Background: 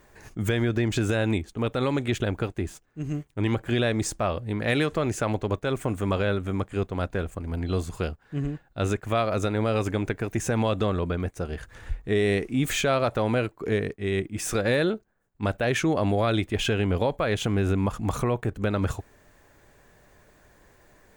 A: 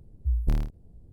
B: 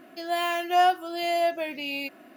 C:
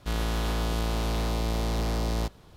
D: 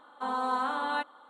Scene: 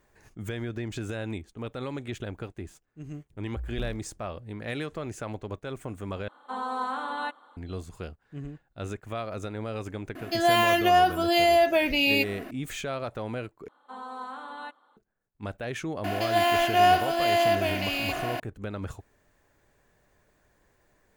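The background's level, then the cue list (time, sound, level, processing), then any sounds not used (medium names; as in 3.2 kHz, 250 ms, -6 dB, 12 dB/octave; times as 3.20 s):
background -9.5 dB
3.30 s: add A -11 dB
6.28 s: replace with D -1.5 dB
10.15 s: add B -12 dB + loudness maximiser +21 dB
13.68 s: replace with D -9 dB
16.04 s: add B -1 dB + spectral levelling over time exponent 0.4
not used: C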